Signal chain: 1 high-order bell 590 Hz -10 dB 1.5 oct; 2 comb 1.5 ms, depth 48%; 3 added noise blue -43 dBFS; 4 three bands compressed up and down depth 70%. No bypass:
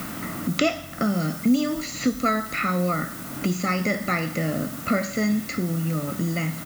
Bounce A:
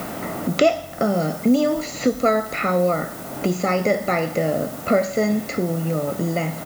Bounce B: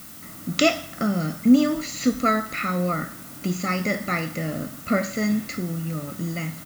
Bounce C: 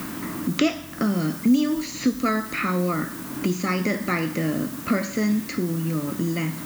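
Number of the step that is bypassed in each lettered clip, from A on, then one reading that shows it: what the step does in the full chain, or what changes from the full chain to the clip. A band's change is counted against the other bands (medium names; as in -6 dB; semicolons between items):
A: 1, 500 Hz band +9.0 dB; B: 4, crest factor change +2.5 dB; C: 2, 250 Hz band +2.5 dB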